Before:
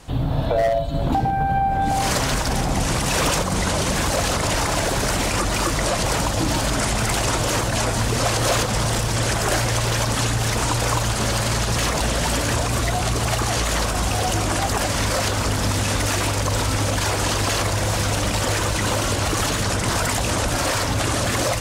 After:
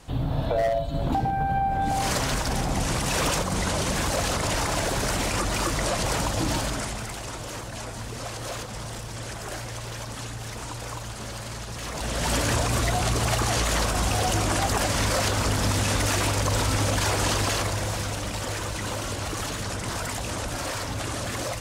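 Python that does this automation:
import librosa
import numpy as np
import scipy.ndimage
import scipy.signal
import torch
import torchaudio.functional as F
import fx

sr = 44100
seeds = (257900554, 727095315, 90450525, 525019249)

y = fx.gain(x, sr, db=fx.line((6.55, -4.5), (7.15, -14.0), (11.79, -14.0), (12.34, -2.5), (17.32, -2.5), (18.19, -9.0)))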